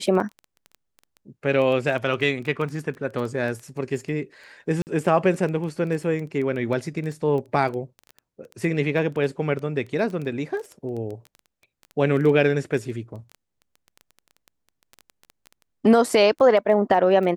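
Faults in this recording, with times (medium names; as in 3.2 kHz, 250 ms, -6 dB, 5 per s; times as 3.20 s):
crackle 10 per s -29 dBFS
4.82–4.87 s: dropout 49 ms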